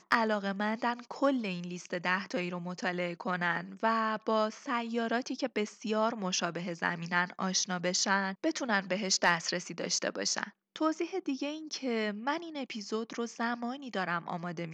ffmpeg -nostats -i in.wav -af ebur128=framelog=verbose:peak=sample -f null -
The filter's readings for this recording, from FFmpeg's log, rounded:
Integrated loudness:
  I:         -32.5 LUFS
  Threshold: -42.5 LUFS
Loudness range:
  LRA:         4.7 LU
  Threshold: -52.3 LUFS
  LRA low:   -35.0 LUFS
  LRA high:  -30.3 LUFS
Sample peak:
  Peak:      -11.0 dBFS